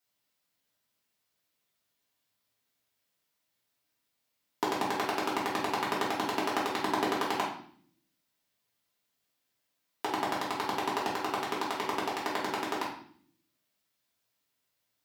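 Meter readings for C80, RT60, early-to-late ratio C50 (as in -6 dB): 8.5 dB, 0.55 s, 5.0 dB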